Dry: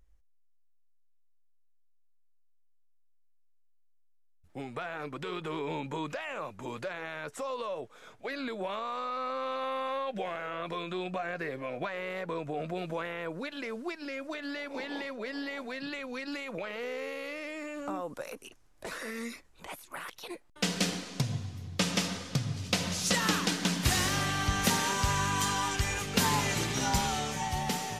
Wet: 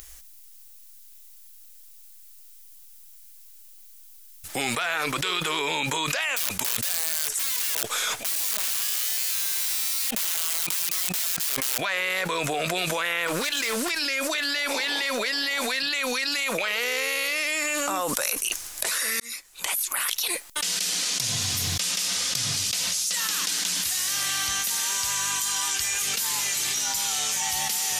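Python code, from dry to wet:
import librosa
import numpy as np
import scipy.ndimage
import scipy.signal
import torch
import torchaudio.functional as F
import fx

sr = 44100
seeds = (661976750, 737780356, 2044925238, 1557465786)

y = fx.overflow_wrap(x, sr, gain_db=34.0, at=(6.36, 11.78))
y = fx.clip_hard(y, sr, threshold_db=-36.0, at=(13.27, 13.9))
y = fx.edit(y, sr, fx.fade_in_span(start_s=19.2, length_s=2.48), tone=tone)
y = librosa.effects.preemphasis(y, coef=0.97, zi=[0.0])
y = fx.env_flatten(y, sr, amount_pct=100)
y = y * 10.0 ** (2.5 / 20.0)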